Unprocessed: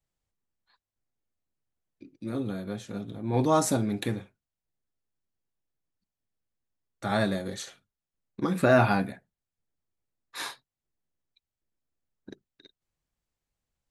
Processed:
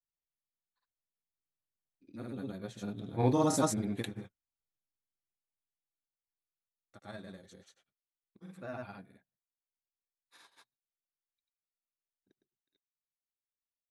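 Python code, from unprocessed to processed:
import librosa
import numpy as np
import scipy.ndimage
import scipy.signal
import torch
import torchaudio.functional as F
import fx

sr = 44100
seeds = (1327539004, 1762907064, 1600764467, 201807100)

y = fx.doppler_pass(x, sr, speed_mps=5, closest_m=2.7, pass_at_s=3.31)
y = fx.granulator(y, sr, seeds[0], grain_ms=100.0, per_s=20.0, spray_ms=100.0, spread_st=0)
y = y * librosa.db_to_amplitude(-1.5)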